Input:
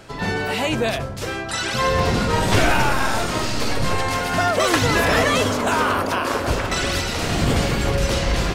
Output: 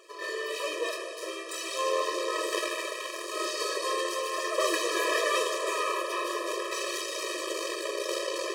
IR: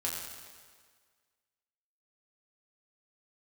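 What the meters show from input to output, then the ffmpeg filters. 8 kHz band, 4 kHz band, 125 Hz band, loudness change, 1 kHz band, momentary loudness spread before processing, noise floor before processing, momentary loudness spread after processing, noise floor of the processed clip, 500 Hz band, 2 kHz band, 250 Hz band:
-6.5 dB, -8.5 dB, under -40 dB, -10.0 dB, -10.5 dB, 6 LU, -29 dBFS, 8 LU, -39 dBFS, -8.0 dB, -11.0 dB, -16.0 dB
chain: -filter_complex "[0:a]aeval=exprs='max(val(0),0)':c=same,asplit=2[a][b];[1:a]atrim=start_sample=2205,asetrate=22932,aresample=44100,highshelf=f=6k:g=7[c];[b][c]afir=irnorm=-1:irlink=0,volume=-10.5dB[d];[a][d]amix=inputs=2:normalize=0,afftfilt=real='re*eq(mod(floor(b*sr/1024/330),2),1)':imag='im*eq(mod(floor(b*sr/1024/330),2),1)':win_size=1024:overlap=0.75,volume=-6.5dB"

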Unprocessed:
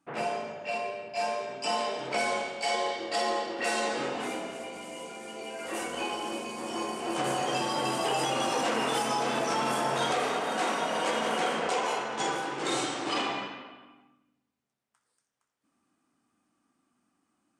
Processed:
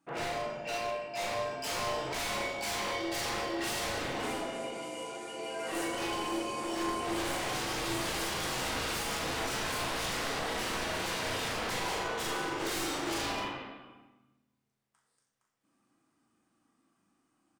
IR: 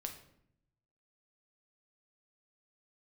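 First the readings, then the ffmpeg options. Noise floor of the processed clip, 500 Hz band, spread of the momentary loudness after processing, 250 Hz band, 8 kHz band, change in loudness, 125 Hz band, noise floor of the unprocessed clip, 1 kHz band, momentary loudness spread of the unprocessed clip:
-78 dBFS, -5.0 dB, 4 LU, -2.5 dB, -0.5 dB, -3.5 dB, +1.0 dB, -81 dBFS, -6.0 dB, 8 LU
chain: -filter_complex "[0:a]aeval=exprs='0.0316*(abs(mod(val(0)/0.0316+3,4)-2)-1)':c=same,asplit=2[a][b];[b]adelay=39,volume=-5.5dB[c];[a][c]amix=inputs=2:normalize=0[d];[1:a]atrim=start_sample=2205[e];[d][e]afir=irnorm=-1:irlink=0,volume=1.5dB"

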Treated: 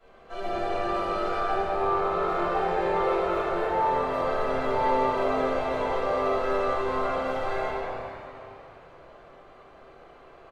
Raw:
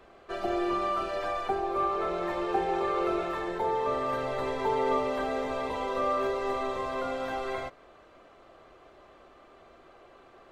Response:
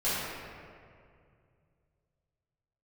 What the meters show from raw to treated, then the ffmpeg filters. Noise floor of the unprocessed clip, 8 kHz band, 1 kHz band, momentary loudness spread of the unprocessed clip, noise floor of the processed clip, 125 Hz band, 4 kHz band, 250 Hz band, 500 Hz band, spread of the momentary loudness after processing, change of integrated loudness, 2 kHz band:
-56 dBFS, n/a, +4.0 dB, 5 LU, -51 dBFS, +5.0 dB, +1.5 dB, +1.0 dB, +4.0 dB, 9 LU, +3.5 dB, +4.0 dB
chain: -filter_complex "[0:a]asplit=8[a][b][c][d][e][f][g][h];[b]adelay=196,afreqshift=97,volume=-8.5dB[i];[c]adelay=392,afreqshift=194,volume=-13.5dB[j];[d]adelay=588,afreqshift=291,volume=-18.6dB[k];[e]adelay=784,afreqshift=388,volume=-23.6dB[l];[f]adelay=980,afreqshift=485,volume=-28.6dB[m];[g]adelay=1176,afreqshift=582,volume=-33.7dB[n];[h]adelay=1372,afreqshift=679,volume=-38.7dB[o];[a][i][j][k][l][m][n][o]amix=inputs=8:normalize=0[p];[1:a]atrim=start_sample=2205[q];[p][q]afir=irnorm=-1:irlink=0,volume=-8dB"

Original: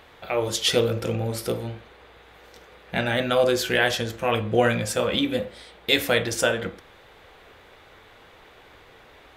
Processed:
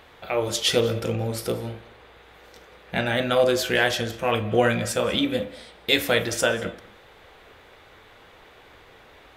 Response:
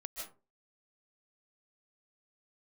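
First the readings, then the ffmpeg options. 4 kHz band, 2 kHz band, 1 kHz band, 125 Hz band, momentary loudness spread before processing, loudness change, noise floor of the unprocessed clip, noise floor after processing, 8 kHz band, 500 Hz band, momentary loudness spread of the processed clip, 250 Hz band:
0.0 dB, 0.0 dB, 0.0 dB, -0.5 dB, 10 LU, 0.0 dB, -51 dBFS, -51 dBFS, 0.0 dB, 0.0 dB, 10 LU, +0.5 dB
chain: -filter_complex "[0:a]asplit=2[a][b];[1:a]atrim=start_sample=2205,adelay=39[c];[b][c]afir=irnorm=-1:irlink=0,volume=-14dB[d];[a][d]amix=inputs=2:normalize=0"

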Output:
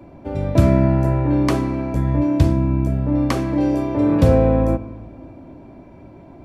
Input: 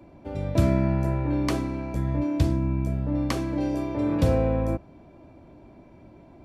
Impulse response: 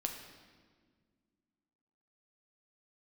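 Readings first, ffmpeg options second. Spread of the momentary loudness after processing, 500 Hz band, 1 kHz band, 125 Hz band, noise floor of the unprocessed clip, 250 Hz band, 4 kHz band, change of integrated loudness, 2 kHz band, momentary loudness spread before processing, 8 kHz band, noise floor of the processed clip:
8 LU, +8.0 dB, +7.5 dB, +7.5 dB, -51 dBFS, +8.0 dB, +3.5 dB, +7.5 dB, +5.5 dB, 7 LU, n/a, -43 dBFS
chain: -filter_complex "[0:a]asplit=2[a][b];[1:a]atrim=start_sample=2205,lowpass=2.7k[c];[b][c]afir=irnorm=-1:irlink=0,volume=-5.5dB[d];[a][d]amix=inputs=2:normalize=0,volume=4dB"

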